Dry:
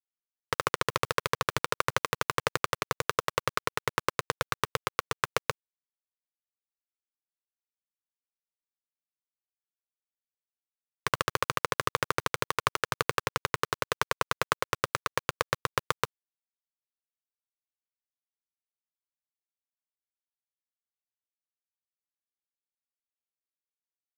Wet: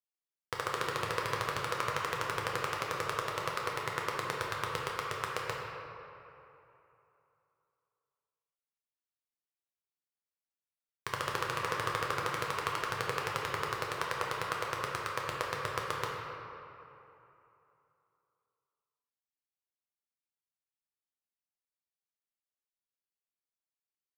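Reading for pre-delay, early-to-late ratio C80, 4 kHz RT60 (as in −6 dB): 8 ms, 1.0 dB, 1.7 s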